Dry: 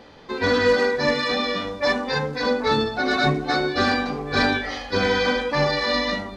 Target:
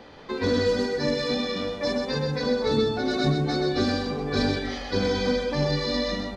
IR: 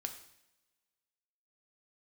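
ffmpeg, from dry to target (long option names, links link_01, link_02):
-filter_complex "[0:a]highshelf=frequency=6700:gain=-4.5,acrossover=split=520|3900[link_01][link_02][link_03];[link_02]acompressor=threshold=-35dB:ratio=10[link_04];[link_01][link_04][link_03]amix=inputs=3:normalize=0,asettb=1/sr,asplit=3[link_05][link_06][link_07];[link_05]atrim=end=5.054[link_08];[link_06]atrim=start=5.05:end=5.46,asetpts=PTS-STARTPTS,afade=type=in:duration=0.004:curve=qsin,afade=type=out:start_time=0.406:duration=0.004:curve=qsin,asuperstop=centerf=2900:order=4:qfactor=7.8[link_09];[link_07]atrim=start=5.456[link_10];[link_08][link_09]acrossfade=duration=0.004:curve1=hsin:curve2=qsin[link_11];[link_11][link_10]acrossfade=duration=0.004:curve1=qsin:curve2=hsin,aecho=1:1:128:0.531"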